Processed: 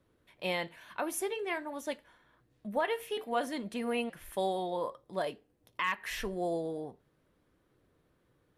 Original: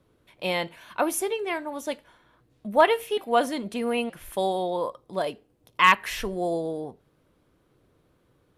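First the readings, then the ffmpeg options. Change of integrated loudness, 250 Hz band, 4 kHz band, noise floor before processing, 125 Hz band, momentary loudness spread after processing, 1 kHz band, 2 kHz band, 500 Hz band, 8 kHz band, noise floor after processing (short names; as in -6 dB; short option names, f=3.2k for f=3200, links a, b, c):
-9.5 dB, -7.0 dB, -9.0 dB, -67 dBFS, -6.5 dB, 8 LU, -11.0 dB, -10.0 dB, -8.5 dB, -8.0 dB, -73 dBFS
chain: -af "equalizer=f=1.8k:t=o:w=0.33:g=5,alimiter=limit=-14.5dB:level=0:latency=1:release=229,flanger=delay=3.1:depth=4:regen=-82:speed=0.52:shape=triangular,volume=-2dB"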